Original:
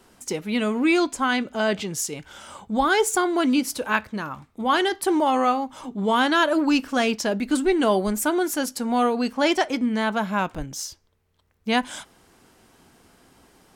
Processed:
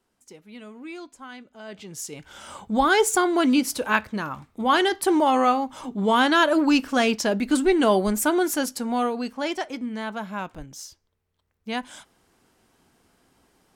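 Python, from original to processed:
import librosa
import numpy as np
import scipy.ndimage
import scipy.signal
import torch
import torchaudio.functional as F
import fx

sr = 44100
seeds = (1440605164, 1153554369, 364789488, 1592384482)

y = fx.gain(x, sr, db=fx.line((1.63, -18.5), (1.91, -9.0), (2.48, 1.0), (8.53, 1.0), (9.5, -7.5)))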